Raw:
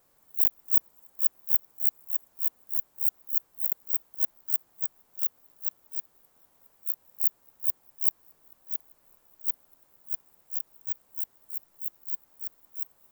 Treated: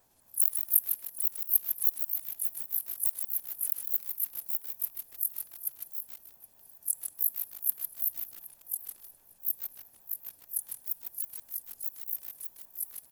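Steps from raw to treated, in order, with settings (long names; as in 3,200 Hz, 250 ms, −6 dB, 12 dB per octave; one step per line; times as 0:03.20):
pitch shifter swept by a sawtooth −10.5 semitones, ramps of 204 ms
comb filter 1.2 ms, depth 31%
feedback echo with a long and a short gap by turns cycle 1,024 ms, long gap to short 3 to 1, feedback 35%, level −19 dB
convolution reverb RT60 2.8 s, pre-delay 6 ms, DRR 18.5 dB
feedback echo at a low word length 153 ms, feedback 35%, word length 7 bits, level −6.5 dB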